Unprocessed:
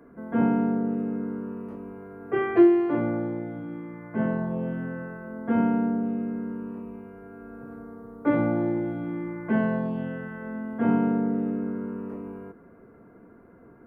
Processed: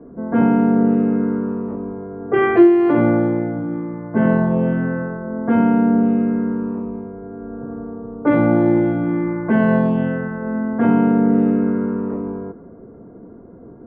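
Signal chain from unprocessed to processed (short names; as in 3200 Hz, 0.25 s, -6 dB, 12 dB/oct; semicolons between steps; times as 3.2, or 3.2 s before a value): low-pass opened by the level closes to 590 Hz, open at -20 dBFS; in parallel at -2.5 dB: negative-ratio compressor -26 dBFS, ratio -0.5; on the sum: gain +6 dB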